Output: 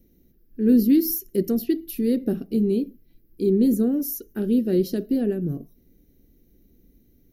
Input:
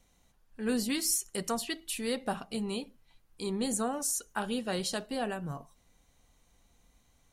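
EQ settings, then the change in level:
drawn EQ curve 120 Hz 0 dB, 360 Hz +11 dB, 960 Hz −29 dB, 1,700 Hz −14 dB, 3,300 Hz −17 dB, 5,500 Hz −11 dB, 8,300 Hz −27 dB, 13,000 Hz +7 dB
+8.0 dB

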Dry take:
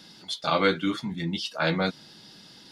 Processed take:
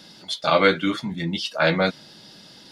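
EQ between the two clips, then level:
dynamic equaliser 2,000 Hz, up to +4 dB, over −39 dBFS, Q 1.2
parametric band 590 Hz +6 dB 0.39 octaves
+3.0 dB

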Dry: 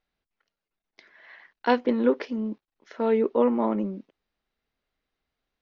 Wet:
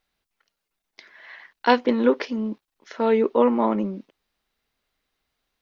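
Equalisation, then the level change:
parametric band 1,000 Hz +2.5 dB
high-shelf EQ 2,500 Hz +8 dB
+2.5 dB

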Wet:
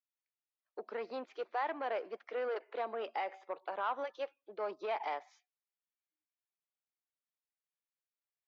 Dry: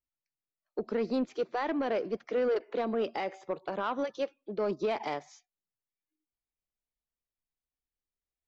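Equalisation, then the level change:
spectral tilt +2.5 dB per octave
dynamic equaliser 830 Hz, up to +5 dB, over −45 dBFS, Q 1.9
band-pass filter 440–2,500 Hz
−4.5 dB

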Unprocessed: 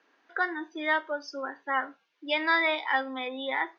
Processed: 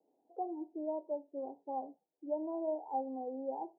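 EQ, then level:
Butterworth low-pass 830 Hz 72 dB per octave
−4.0 dB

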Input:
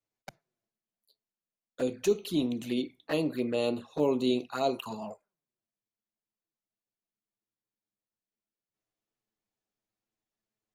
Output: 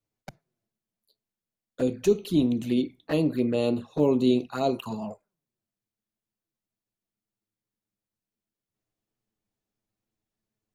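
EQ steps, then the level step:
low-shelf EQ 320 Hz +11 dB
0.0 dB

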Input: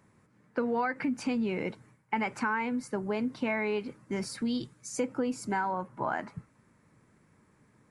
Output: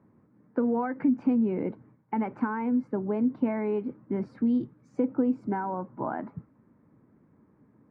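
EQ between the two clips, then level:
high-pass filter 44 Hz
low-pass filter 1,100 Hz 12 dB per octave
parametric band 270 Hz +7.5 dB 0.93 octaves
0.0 dB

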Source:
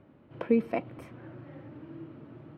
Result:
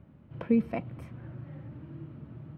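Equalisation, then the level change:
parametric band 72 Hz +12 dB 0.24 octaves
low shelf with overshoot 240 Hz +7.5 dB, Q 1.5
−3.0 dB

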